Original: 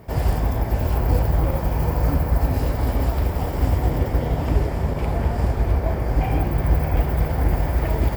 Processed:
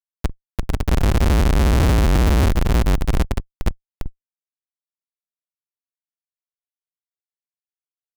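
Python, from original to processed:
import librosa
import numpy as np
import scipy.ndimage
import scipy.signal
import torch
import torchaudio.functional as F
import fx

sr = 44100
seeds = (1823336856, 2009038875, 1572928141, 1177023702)

y = fx.spec_expand(x, sr, power=2.0)
y = fx.doppler_pass(y, sr, speed_mps=21, closest_m=6.5, pass_at_s=1.98)
y = scipy.signal.sosfilt(scipy.signal.butter(2, 2400.0, 'lowpass', fs=sr, output='sos'), y)
y = fx.echo_feedback(y, sr, ms=64, feedback_pct=24, wet_db=-5.0)
y = fx.schmitt(y, sr, flips_db=-27.0)
y = fx.dereverb_blind(y, sr, rt60_s=0.91)
y = fx.fuzz(y, sr, gain_db=63.0, gate_db=-53.0)
y = fx.upward_expand(y, sr, threshold_db=-29.0, expansion=1.5)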